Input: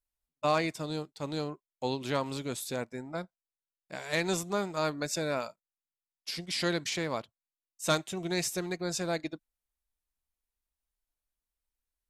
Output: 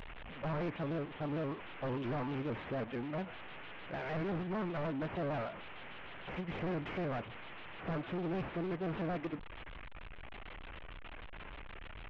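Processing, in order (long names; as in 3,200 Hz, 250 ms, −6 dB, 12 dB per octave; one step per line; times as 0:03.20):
linear delta modulator 16 kbit/s, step −45.5 dBFS
soft clipping −38 dBFS, distortion −6 dB
pitch modulation by a square or saw wave square 6.6 Hz, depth 100 cents
level +4.5 dB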